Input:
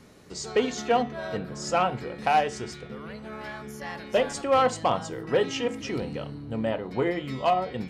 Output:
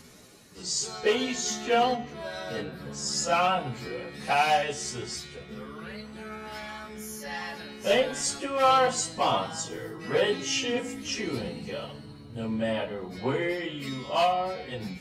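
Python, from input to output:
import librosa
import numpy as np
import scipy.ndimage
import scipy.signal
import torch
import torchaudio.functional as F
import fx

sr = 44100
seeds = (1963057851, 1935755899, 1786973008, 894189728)

y = fx.stretch_vocoder_free(x, sr, factor=1.9)
y = fx.high_shelf(y, sr, hz=2800.0, db=11.0)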